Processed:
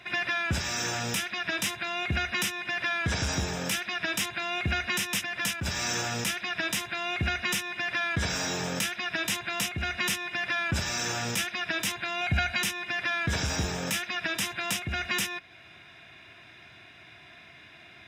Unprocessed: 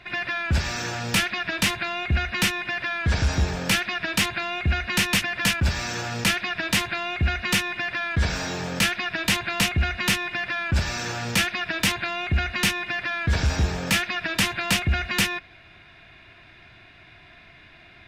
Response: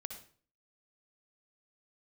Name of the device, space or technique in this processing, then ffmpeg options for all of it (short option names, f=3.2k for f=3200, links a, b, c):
PA system with an anti-feedback notch: -filter_complex "[0:a]highpass=100,asuperstop=centerf=4400:order=4:qfactor=7.2,bass=f=250:g=-1,treble=f=4k:g=7,alimiter=limit=-16.5dB:level=0:latency=1:release=414,asettb=1/sr,asplit=3[a][b][c];[a]atrim=end=12.214[d];[b]atrim=start=12.21:end=12.62,asetpts=PTS-STARTPTS,afade=t=in:d=0.004:c=qsin,afade=t=out:st=0.406:d=0.004:c=qsin,aecho=1:1:1.3:0.57,atrim=end_sample=18081[e];[c]atrim=start=12.616[f];[d][e]acrossfade=d=0.004:c1=hsin:c2=qsin[g];[g][f]acrossfade=d=0.004:c1=qsin:c2=hsin,volume=-1.5dB"